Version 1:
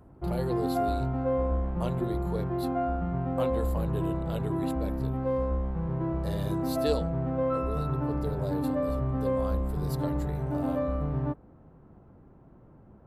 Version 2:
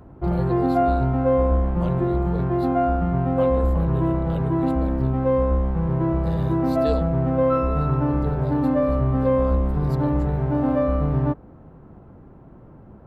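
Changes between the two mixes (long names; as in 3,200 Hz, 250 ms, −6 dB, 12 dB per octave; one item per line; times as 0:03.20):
speech: add parametric band 11,000 Hz −11.5 dB 1.4 octaves
background +8.5 dB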